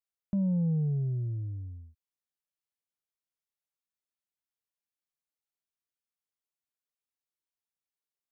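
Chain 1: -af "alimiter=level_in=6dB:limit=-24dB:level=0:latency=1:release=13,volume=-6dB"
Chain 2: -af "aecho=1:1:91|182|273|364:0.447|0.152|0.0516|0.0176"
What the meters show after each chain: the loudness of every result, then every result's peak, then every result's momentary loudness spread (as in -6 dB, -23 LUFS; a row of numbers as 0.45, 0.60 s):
-35.0, -30.0 LUFS; -30.0, -20.5 dBFS; 9, 14 LU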